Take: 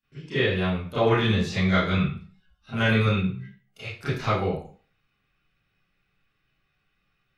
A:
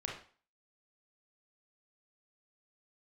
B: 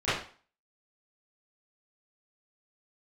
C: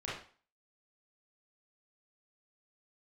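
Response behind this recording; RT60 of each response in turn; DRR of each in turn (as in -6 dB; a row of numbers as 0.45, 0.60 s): B; 0.40, 0.40, 0.40 s; -1.5, -17.0, -8.0 dB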